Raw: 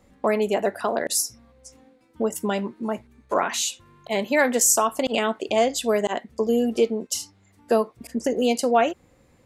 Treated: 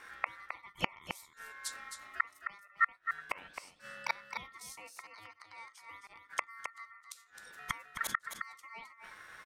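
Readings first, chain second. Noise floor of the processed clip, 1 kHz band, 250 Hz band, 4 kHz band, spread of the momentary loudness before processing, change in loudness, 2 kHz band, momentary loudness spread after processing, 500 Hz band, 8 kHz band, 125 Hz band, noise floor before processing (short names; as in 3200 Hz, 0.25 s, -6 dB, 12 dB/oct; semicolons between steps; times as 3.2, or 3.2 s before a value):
-64 dBFS, -14.0 dB, -31.0 dB, -16.0 dB, 9 LU, -16.5 dB, -7.0 dB, 15 LU, -32.5 dB, -23.5 dB, n/a, -59 dBFS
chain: flipped gate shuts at -22 dBFS, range -36 dB; echo 0.264 s -7.5 dB; ring modulator 1600 Hz; gain +8 dB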